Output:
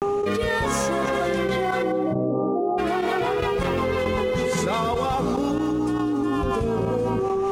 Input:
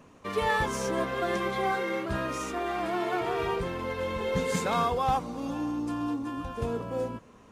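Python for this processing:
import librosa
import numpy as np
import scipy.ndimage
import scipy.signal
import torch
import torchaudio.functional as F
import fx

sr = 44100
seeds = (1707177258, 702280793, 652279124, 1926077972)

y = fx.cheby1_bandpass(x, sr, low_hz=110.0, high_hz=860.0, order=5, at=(1.82, 2.76), fade=0.02)
y = fx.dmg_buzz(y, sr, base_hz=400.0, harmonics=3, level_db=-41.0, tilt_db=-6, odd_only=False)
y = fx.rotary_switch(y, sr, hz=0.9, then_hz=5.5, switch_at_s=1.97)
y = fx.quant_dither(y, sr, seeds[0], bits=12, dither='triangular', at=(3.39, 3.85))
y = fx.step_gate(y, sr, bpm=70, pattern='.xxxx..x.', floor_db=-12.0, edge_ms=4.5)
y = fx.vibrato(y, sr, rate_hz=0.39, depth_cents=72.0)
y = fx.echo_feedback(y, sr, ms=212, feedback_pct=30, wet_db=-21)
y = fx.env_flatten(y, sr, amount_pct=100)
y = F.gain(torch.from_numpy(y), 3.0).numpy()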